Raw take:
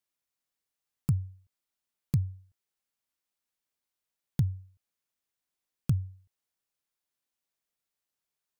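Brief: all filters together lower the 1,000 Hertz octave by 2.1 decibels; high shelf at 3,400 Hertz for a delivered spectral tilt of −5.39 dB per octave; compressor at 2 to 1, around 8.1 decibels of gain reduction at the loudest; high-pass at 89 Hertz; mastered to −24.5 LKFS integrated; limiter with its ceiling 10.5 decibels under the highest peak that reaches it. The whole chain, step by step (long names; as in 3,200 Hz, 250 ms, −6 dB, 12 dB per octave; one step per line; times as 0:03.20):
high-pass filter 89 Hz
parametric band 1,000 Hz −3.5 dB
high-shelf EQ 3,400 Hz +7 dB
downward compressor 2 to 1, threshold −37 dBFS
level +21.5 dB
brickwall limiter −8 dBFS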